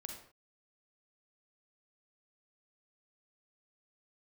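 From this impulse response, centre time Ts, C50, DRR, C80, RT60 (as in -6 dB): 31 ms, 3.5 dB, 2.5 dB, 8.0 dB, no single decay rate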